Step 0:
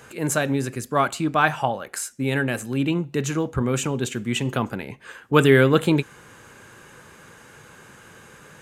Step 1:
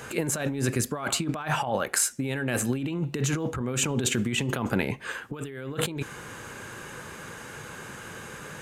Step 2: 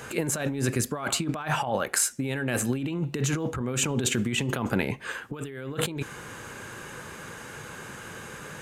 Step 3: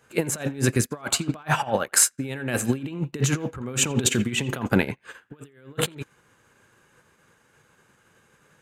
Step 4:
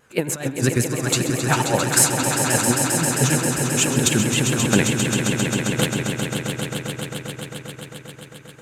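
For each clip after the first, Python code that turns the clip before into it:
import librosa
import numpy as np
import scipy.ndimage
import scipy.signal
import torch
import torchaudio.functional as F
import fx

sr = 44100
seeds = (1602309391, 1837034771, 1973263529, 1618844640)

y1 = fx.over_compress(x, sr, threshold_db=-29.0, ratio=-1.0)
y2 = y1
y3 = fx.echo_banded(y2, sr, ms=85, feedback_pct=49, hz=1800.0, wet_db=-14.0)
y3 = fx.upward_expand(y3, sr, threshold_db=-44.0, expansion=2.5)
y3 = F.gain(torch.from_numpy(y3), 8.0).numpy()
y4 = fx.vibrato(y3, sr, rate_hz=7.6, depth_cents=85.0)
y4 = fx.echo_swell(y4, sr, ms=133, loudest=5, wet_db=-8)
y4 = F.gain(torch.from_numpy(y4), 2.0).numpy()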